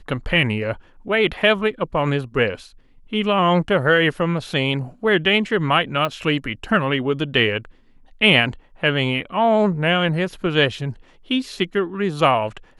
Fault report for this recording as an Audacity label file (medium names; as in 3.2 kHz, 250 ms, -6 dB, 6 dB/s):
6.050000	6.050000	pop -11 dBFS